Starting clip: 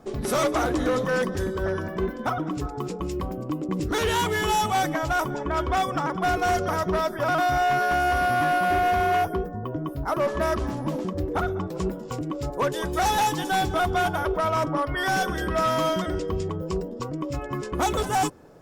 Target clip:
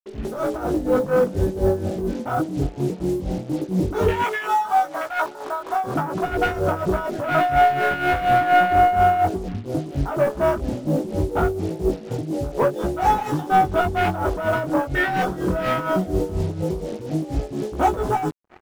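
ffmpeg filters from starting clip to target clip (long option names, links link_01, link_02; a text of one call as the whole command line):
ffmpeg -i in.wav -filter_complex "[0:a]bandreject=frequency=1100:width=6.6,afwtdn=0.0501,asplit=2[link_01][link_02];[link_02]adelay=699.7,volume=-28dB,highshelf=frequency=4000:gain=-15.7[link_03];[link_01][link_03]amix=inputs=2:normalize=0,dynaudnorm=framelen=240:gausssize=7:maxgain=7dB,asettb=1/sr,asplit=3[link_04][link_05][link_06];[link_04]atrim=end=4.224[link_07];[link_05]atrim=start=4.22:end=5.84,asetpts=PTS-STARTPTS,afade=type=in:duration=0.004:curve=qsin,afade=type=out:start_time=1.616:duration=0.004:curve=qsin,highpass=730[link_08];[link_06]atrim=start=5.836[link_09];[link_07][link_08]acrossfade=duration=0.004:curve1=hsin:curve2=qsin[link_10];[link_10][link_09]acrossfade=duration=0.004:curve1=qsin:curve2=hsin,asoftclip=type=tanh:threshold=-12.5dB,flanger=delay=18.5:depth=3.8:speed=0.17,acrusher=bits=6:mix=0:aa=0.5,tremolo=f=4.2:d=0.68,volume=5dB" out.wav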